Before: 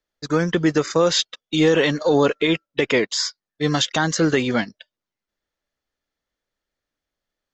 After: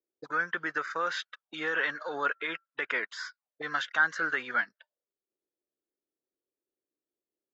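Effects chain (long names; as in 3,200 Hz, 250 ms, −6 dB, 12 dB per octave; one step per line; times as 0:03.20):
envelope filter 360–1,500 Hz, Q 4.5, up, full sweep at −24.5 dBFS
level +2.5 dB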